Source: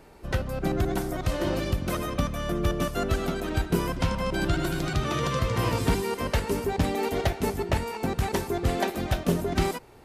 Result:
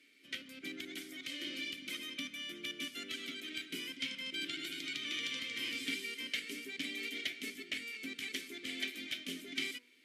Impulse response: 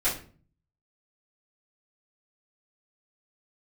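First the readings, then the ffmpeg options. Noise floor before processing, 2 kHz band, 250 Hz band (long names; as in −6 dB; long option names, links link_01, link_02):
−44 dBFS, −5.0 dB, −17.5 dB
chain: -filter_complex "[0:a]asplit=3[link_01][link_02][link_03];[link_01]bandpass=frequency=270:width_type=q:width=8,volume=0dB[link_04];[link_02]bandpass=frequency=2290:width_type=q:width=8,volume=-6dB[link_05];[link_03]bandpass=frequency=3010:width_type=q:width=8,volume=-9dB[link_06];[link_04][link_05][link_06]amix=inputs=3:normalize=0,aderivative,bandreject=frequency=122.1:width_type=h:width=4,bandreject=frequency=244.2:width_type=h:width=4,bandreject=frequency=366.3:width_type=h:width=4,bandreject=frequency=488.4:width_type=h:width=4,bandreject=frequency=610.5:width_type=h:width=4,bandreject=frequency=732.6:width_type=h:width=4,bandreject=frequency=854.7:width_type=h:width=4,bandreject=frequency=976.8:width_type=h:width=4,bandreject=frequency=1098.9:width_type=h:width=4,bandreject=frequency=1221:width_type=h:width=4,bandreject=frequency=1343.1:width_type=h:width=4,bandreject=frequency=1465.2:width_type=h:width=4,bandreject=frequency=1587.3:width_type=h:width=4,bandreject=frequency=1709.4:width_type=h:width=4,volume=18dB"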